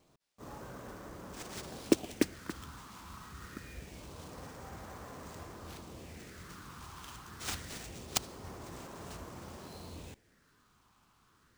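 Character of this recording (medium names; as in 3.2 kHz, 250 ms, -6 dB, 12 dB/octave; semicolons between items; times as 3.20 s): phasing stages 6, 0.25 Hz, lowest notch 530–4600 Hz; aliases and images of a low sample rate 15 kHz, jitter 20%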